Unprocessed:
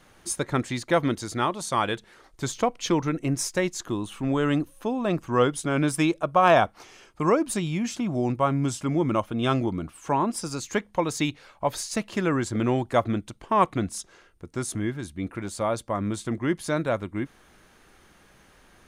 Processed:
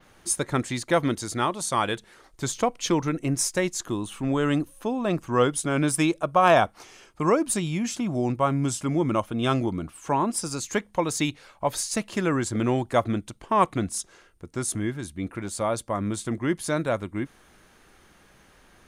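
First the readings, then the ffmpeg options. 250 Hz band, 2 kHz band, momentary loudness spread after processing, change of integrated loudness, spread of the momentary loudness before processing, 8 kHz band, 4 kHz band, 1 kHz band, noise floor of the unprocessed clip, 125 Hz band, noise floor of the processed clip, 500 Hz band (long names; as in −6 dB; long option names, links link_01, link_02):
0.0 dB, 0.0 dB, 8 LU, +0.5 dB, 9 LU, +4.5 dB, +1.0 dB, 0.0 dB, −57 dBFS, 0.0 dB, −57 dBFS, 0.0 dB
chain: -af "adynamicequalizer=threshold=0.00355:dfrequency=9700:dqfactor=0.85:tfrequency=9700:tqfactor=0.85:attack=5:release=100:ratio=0.375:range=3:mode=boostabove:tftype=bell"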